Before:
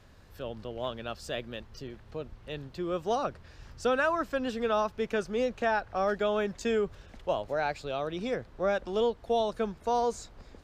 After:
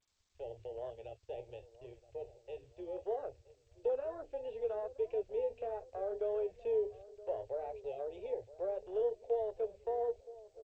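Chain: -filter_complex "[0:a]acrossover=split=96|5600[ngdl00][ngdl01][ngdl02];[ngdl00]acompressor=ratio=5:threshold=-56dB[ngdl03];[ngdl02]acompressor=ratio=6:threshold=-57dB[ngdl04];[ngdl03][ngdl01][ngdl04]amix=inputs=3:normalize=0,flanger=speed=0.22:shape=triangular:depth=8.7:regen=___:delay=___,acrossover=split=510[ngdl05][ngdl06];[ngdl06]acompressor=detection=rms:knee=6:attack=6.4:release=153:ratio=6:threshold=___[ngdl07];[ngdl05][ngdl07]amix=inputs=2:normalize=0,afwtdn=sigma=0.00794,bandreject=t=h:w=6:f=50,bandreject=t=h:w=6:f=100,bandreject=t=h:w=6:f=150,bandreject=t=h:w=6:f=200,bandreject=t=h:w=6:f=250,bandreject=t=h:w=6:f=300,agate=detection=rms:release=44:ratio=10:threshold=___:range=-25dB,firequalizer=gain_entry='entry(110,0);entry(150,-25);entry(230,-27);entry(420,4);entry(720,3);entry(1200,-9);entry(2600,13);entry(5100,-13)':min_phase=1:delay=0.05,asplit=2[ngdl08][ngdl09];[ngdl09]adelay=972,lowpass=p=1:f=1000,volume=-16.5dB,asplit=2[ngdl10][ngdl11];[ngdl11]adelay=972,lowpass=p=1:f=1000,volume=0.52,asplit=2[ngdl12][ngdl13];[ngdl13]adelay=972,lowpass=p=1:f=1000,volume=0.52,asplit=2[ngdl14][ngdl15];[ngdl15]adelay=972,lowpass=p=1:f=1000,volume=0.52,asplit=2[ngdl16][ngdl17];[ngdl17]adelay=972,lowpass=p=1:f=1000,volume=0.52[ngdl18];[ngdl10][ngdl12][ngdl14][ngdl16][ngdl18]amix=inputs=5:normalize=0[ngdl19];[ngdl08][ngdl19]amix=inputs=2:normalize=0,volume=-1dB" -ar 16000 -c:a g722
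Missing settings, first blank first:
-57, 9.6, -48dB, -58dB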